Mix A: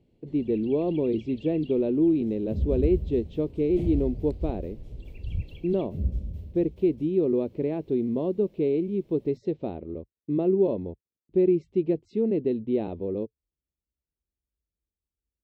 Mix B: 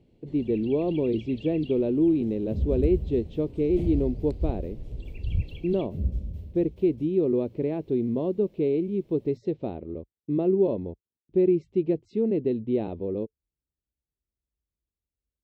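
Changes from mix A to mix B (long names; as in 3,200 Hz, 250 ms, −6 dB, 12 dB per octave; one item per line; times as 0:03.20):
speech: add parametric band 120 Hz +5 dB 0.29 octaves
first sound +4.0 dB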